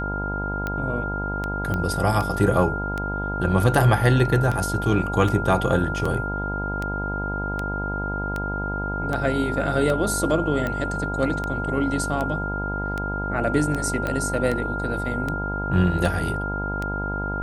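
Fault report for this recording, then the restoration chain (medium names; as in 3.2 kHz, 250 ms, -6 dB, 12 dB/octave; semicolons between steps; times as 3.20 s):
buzz 50 Hz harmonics 20 -29 dBFS
tick 78 rpm -14 dBFS
whine 1.4 kHz -28 dBFS
1.74 s: pop -14 dBFS
14.07 s: pop -13 dBFS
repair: de-click; de-hum 50 Hz, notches 20; band-stop 1.4 kHz, Q 30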